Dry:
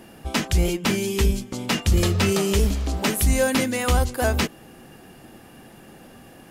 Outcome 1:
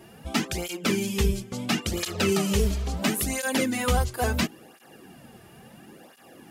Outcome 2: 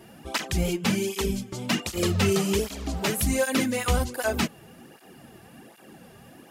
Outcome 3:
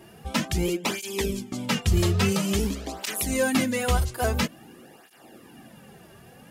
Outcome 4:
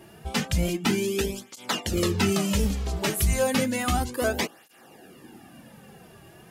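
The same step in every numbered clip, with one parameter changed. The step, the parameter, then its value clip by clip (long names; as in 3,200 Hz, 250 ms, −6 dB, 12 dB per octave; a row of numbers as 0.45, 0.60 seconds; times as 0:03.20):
through-zero flanger with one copy inverted, nulls at: 0.73, 1.3, 0.49, 0.32 Hertz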